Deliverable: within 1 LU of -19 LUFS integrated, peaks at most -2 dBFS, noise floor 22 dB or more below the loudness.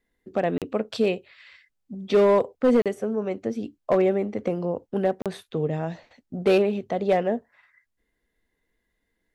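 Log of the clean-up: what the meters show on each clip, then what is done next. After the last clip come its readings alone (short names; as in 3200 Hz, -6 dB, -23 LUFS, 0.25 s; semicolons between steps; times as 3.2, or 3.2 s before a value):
clipped 0.7%; flat tops at -13.0 dBFS; dropouts 3; longest dropout 37 ms; loudness -25.0 LUFS; peak -13.0 dBFS; loudness target -19.0 LUFS
-> clip repair -13 dBFS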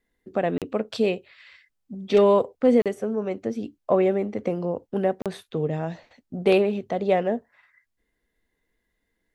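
clipped 0.0%; dropouts 3; longest dropout 37 ms
-> interpolate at 0.58/2.82/5.22, 37 ms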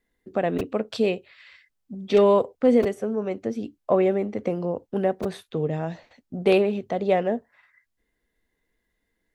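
dropouts 0; loudness -24.5 LUFS; peak -6.5 dBFS; loudness target -19.0 LUFS
-> gain +5.5 dB; limiter -2 dBFS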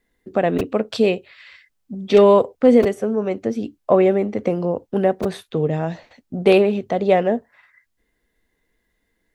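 loudness -19.0 LUFS; peak -2.0 dBFS; noise floor -72 dBFS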